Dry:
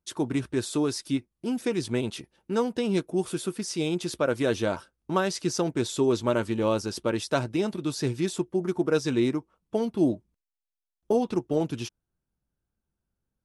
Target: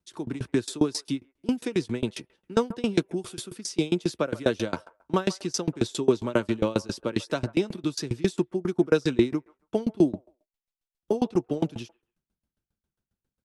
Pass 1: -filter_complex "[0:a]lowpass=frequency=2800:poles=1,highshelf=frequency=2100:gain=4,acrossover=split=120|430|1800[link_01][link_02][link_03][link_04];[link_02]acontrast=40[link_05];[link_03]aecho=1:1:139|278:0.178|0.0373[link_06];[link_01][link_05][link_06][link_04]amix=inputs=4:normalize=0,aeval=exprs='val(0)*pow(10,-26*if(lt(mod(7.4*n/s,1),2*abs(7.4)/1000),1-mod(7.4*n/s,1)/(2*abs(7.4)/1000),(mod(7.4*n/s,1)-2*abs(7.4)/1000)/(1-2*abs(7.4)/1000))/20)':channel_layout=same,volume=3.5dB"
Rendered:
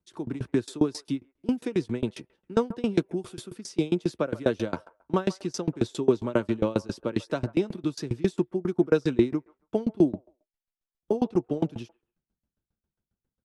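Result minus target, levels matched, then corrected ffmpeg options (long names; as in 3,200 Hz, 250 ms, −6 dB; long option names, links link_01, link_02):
4,000 Hz band −5.5 dB
-filter_complex "[0:a]lowpass=frequency=2800:poles=1,highshelf=frequency=2100:gain=12,acrossover=split=120|430|1800[link_01][link_02][link_03][link_04];[link_02]acontrast=40[link_05];[link_03]aecho=1:1:139|278:0.178|0.0373[link_06];[link_01][link_05][link_06][link_04]amix=inputs=4:normalize=0,aeval=exprs='val(0)*pow(10,-26*if(lt(mod(7.4*n/s,1),2*abs(7.4)/1000),1-mod(7.4*n/s,1)/(2*abs(7.4)/1000),(mod(7.4*n/s,1)-2*abs(7.4)/1000)/(1-2*abs(7.4)/1000))/20)':channel_layout=same,volume=3.5dB"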